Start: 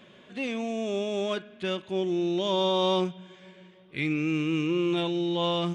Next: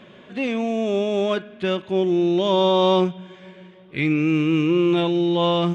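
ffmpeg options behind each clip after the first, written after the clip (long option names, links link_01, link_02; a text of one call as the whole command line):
ffmpeg -i in.wav -af "highshelf=frequency=4000:gain=-10,volume=8dB" out.wav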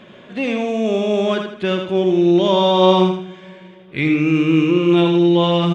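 ffmpeg -i in.wav -af "aecho=1:1:81|162|243|324:0.501|0.18|0.065|0.0234,volume=3dB" out.wav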